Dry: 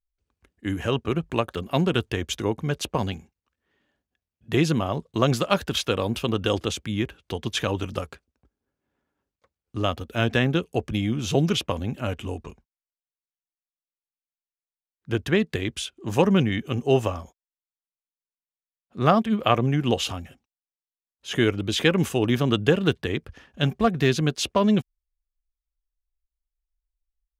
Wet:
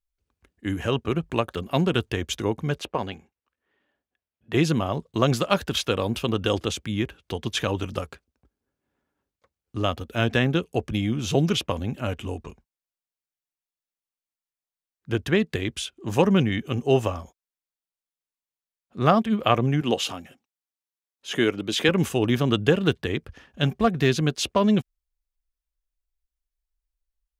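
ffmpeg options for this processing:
-filter_complex "[0:a]asplit=3[a][b][c];[a]afade=t=out:st=2.79:d=0.02[d];[b]bass=f=250:g=-9,treble=f=4k:g=-10,afade=t=in:st=2.79:d=0.02,afade=t=out:st=4.54:d=0.02[e];[c]afade=t=in:st=4.54:d=0.02[f];[d][e][f]amix=inputs=3:normalize=0,asettb=1/sr,asplit=3[g][h][i];[g]atrim=end=19.814[j];[h]atrim=start=19.81:end=21.89,asetpts=PTS-STARTPTS,afade=t=in:d=0.004:c=qsin,afade=t=out:st=2.076:d=0.004:c=qsin,highpass=180[k];[i]atrim=start=21.886[l];[j][k]acrossfade=d=0.004:c1=hsin:c2=qsin[m];[m][l]acrossfade=d=0.004:c1=qsin:c2=hsin"

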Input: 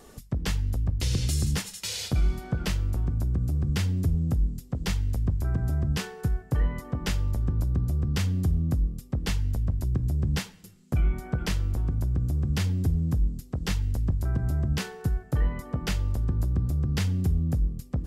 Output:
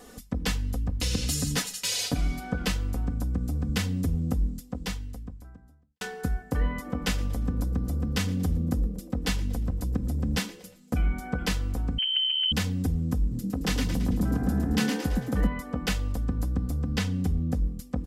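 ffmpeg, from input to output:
-filter_complex "[0:a]asettb=1/sr,asplit=3[a][b][c];[a]atrim=end=1.314[d];[b]atrim=start=1.31:end=2.4,asetpts=PTS-STARTPTS,afade=t=in:d=0.004:c=qsin,afade=t=out:st=1.086:d=0.004:c=qsin,aecho=1:1:7.1:0.65,atrim=end_sample=48069[e];[c]atrim=start=2.396[f];[d][e]acrossfade=d=0.004:c1=hsin:c2=qsin[g];[g][f]acrossfade=d=0.004:c1=qsin:c2=hsin,asplit=3[h][i][j];[h]afade=t=out:st=6.85:d=0.02[k];[i]asplit=4[l][m][n][o];[m]adelay=117,afreqshift=140,volume=-20dB[p];[n]adelay=234,afreqshift=280,volume=-27.7dB[q];[o]adelay=351,afreqshift=420,volume=-35.5dB[r];[l][p][q][r]amix=inputs=4:normalize=0,afade=t=in:st=6.85:d=0.02,afade=t=out:st=11.03:d=0.02[s];[j]afade=t=in:st=11.03:d=0.02[t];[k][s][t]amix=inputs=3:normalize=0,asettb=1/sr,asplit=3[u][v][w];[u]atrim=end=11.984[x];[v]atrim=start=11.98:end=12.52,asetpts=PTS-STARTPTS,afade=t=in:d=0.004:c=qsin,afade=t=out:st=0.536:d=0.004:c=qsin,lowpass=f=2.7k:t=q:w=0.5098,lowpass=f=2.7k:t=q:w=0.6013,lowpass=f=2.7k:t=q:w=0.9,lowpass=f=2.7k:t=q:w=2.563,afreqshift=-3200[y];[w]atrim=start=12.516[z];[x][y]acrossfade=d=0.004:c1=hsin:c2=qsin[aa];[aa][z]acrossfade=d=0.004:c1=qsin:c2=hsin,asettb=1/sr,asplit=3[ab][ac][ad];[ab]atrim=end=13.204[ae];[ac]atrim=start=13.2:end=15.47,asetpts=PTS-STARTPTS,afade=t=in:d=0.004:c=qsin,afade=t=out:st=2.266:d=0.004:c=qsin,asplit=7[af][ag][ah][ai][aj][ak][al];[ag]adelay=111,afreqshift=73,volume=-4.5dB[am];[ah]adelay=222,afreqshift=146,volume=-10.9dB[an];[ai]adelay=333,afreqshift=219,volume=-17.3dB[ao];[aj]adelay=444,afreqshift=292,volume=-23.6dB[ap];[ak]adelay=555,afreqshift=365,volume=-30dB[aq];[al]adelay=666,afreqshift=438,volume=-36.4dB[ar];[af][am][an][ao][ap][aq][ar]amix=inputs=7:normalize=0,atrim=end_sample=100107[as];[ad]atrim=start=15.466[at];[ae][as]acrossfade=d=0.004:c1=hsin:c2=qsin[au];[au][at]acrossfade=d=0.004:c1=qsin:c2=hsin,asettb=1/sr,asplit=3[av][aw][ax];[av]atrim=end=16.964[ay];[aw]atrim=start=16.96:end=17.65,asetpts=PTS-STARTPTS,afade=t=in:d=0.004:c=qsin,afade=t=out:st=0.686:d=0.004:c=qsin,highshelf=f=8.8k:g=-8[az];[ax]atrim=start=17.646[ba];[ay][az]acrossfade=d=0.004:c1=hsin:c2=qsin[bb];[bb][ba]acrossfade=d=0.004:c1=qsin:c2=hsin,asplit=2[bc][bd];[bc]atrim=end=6.01,asetpts=PTS-STARTPTS,afade=t=out:st=4.52:d=1.49:c=qua[be];[bd]atrim=start=6.01,asetpts=PTS-STARTPTS,afade=t=in:d=0.004:c=hsin[bf];[be][bf]concat=n=2:v=0:a=1,lowshelf=f=76:g=-8,aecho=1:1:4:0.64,volume=1.5dB"

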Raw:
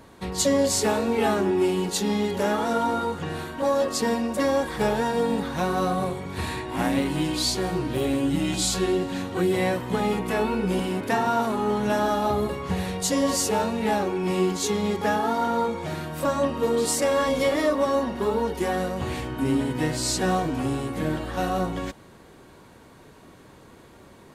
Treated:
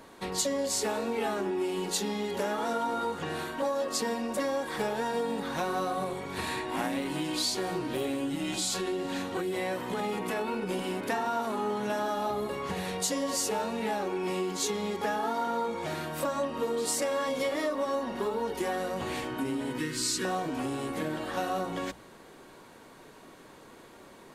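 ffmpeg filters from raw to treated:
-filter_complex "[0:a]asettb=1/sr,asplit=3[a][b][c];[a]atrim=end=8.554[d];[b]atrim=start=8.55:end=10.69,asetpts=PTS-STARTPTS,afade=t=in:d=0.004:c=qsin,afade=t=out:st=2.136:d=0.004:c=qsin,acompressor=threshold=-23dB:ratio=6:attack=3.2:release=140:knee=1:detection=peak[e];[c]atrim=start=10.686[f];[d][e]acrossfade=d=0.004:c1=hsin:c2=qsin[g];[g][f]acrossfade=d=0.004:c1=qsin:c2=hsin,asettb=1/sr,asplit=3[h][i][j];[h]atrim=end=19.784[k];[i]atrim=start=19.78:end=20.25,asetpts=PTS-STARTPTS,afade=t=in:d=0.004:c=qsin,afade=t=out:st=0.466:d=0.004:c=qsin,asuperstop=centerf=700:order=4:qfactor=1[l];[j]atrim=start=20.246[m];[k][l]acrossfade=d=0.004:c1=hsin:c2=qsin[n];[n][m]acrossfade=d=0.004:c1=qsin:c2=hsin,bandreject=f=60:t=h:w=6,bandreject=f=120:t=h:w=6,bandreject=f=180:t=h:w=6,acompressor=threshold=-26dB:ratio=6,equalizer=f=69:w=0.54:g=-12.5"

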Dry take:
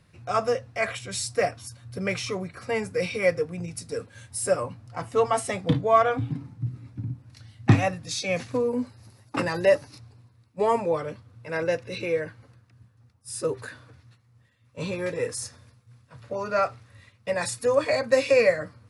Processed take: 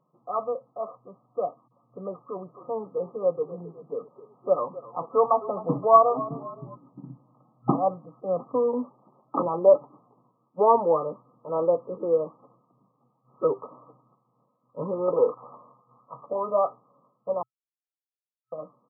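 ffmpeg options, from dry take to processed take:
-filter_complex "[0:a]asplit=3[a][b][c];[a]afade=t=out:st=2.34:d=0.02[d];[b]asplit=5[e][f][g][h][i];[f]adelay=259,afreqshift=-31,volume=-17dB[j];[g]adelay=518,afreqshift=-62,volume=-23.6dB[k];[h]adelay=777,afreqshift=-93,volume=-30.1dB[l];[i]adelay=1036,afreqshift=-124,volume=-36.7dB[m];[e][j][k][l][m]amix=inputs=5:normalize=0,afade=t=in:st=2.34:d=0.02,afade=t=out:st=6.74:d=0.02[n];[c]afade=t=in:st=6.74:d=0.02[o];[d][n][o]amix=inputs=3:normalize=0,asettb=1/sr,asplit=3[p][q][r];[p]atrim=end=15.084[s];[q]atrim=start=15.08:end=16.26,asetpts=PTS-STARTPTS,afade=t=in:d=0.004:c=qsin,afade=t=out:st=1.176:d=0.004:c=qsin,equalizer=f=1.6k:w=0.43:g=11[t];[r]atrim=start=16.256[u];[s][t]acrossfade=d=0.004:c1=hsin:c2=qsin[v];[v][u]acrossfade=d=0.004:c1=qsin:c2=hsin,asplit=3[w][x][y];[w]atrim=end=17.43,asetpts=PTS-STARTPTS,afade=t=out:st=17.426:d=0.004:c=hsin[z];[x]atrim=start=17.43:end=18.52,asetpts=PTS-STARTPTS,volume=0[aa];[y]atrim=start=18.52,asetpts=PTS-STARTPTS,afade=t=in:d=0.004:c=hsin[ab];[z][aa][ab]concat=n=3:v=0:a=1,afftfilt=real='re*between(b*sr/4096,120,1300)':imag='im*between(b*sr/4096,120,1300)':win_size=4096:overlap=0.75,aemphasis=mode=production:type=riaa,dynaudnorm=f=340:g=21:m=9dB,volume=-2dB"

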